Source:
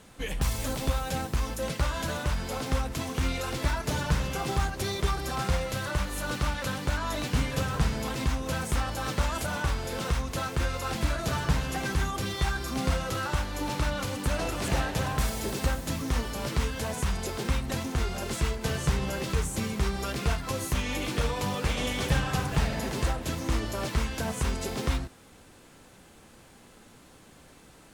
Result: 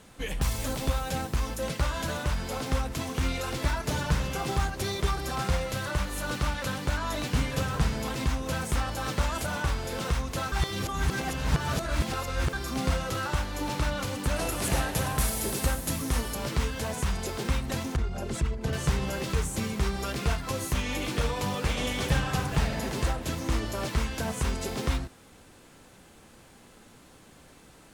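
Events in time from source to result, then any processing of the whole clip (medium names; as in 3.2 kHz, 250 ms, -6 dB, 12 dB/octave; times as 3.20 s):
10.52–12.53 s: reverse
14.36–16.35 s: peaking EQ 11 kHz +10.5 dB 0.84 oct
17.96–18.73 s: resonances exaggerated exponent 1.5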